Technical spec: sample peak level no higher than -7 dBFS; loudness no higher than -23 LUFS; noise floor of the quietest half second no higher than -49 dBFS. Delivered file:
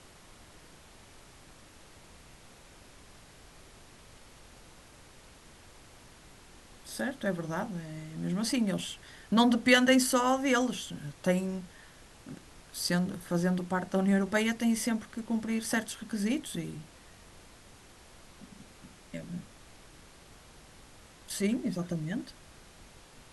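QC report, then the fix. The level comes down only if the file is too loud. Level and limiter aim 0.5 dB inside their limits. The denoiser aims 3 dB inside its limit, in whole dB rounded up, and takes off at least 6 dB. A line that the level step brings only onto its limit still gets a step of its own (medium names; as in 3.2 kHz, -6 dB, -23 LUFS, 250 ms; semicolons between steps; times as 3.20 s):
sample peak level -10.0 dBFS: pass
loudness -30.0 LUFS: pass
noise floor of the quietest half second -54 dBFS: pass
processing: none needed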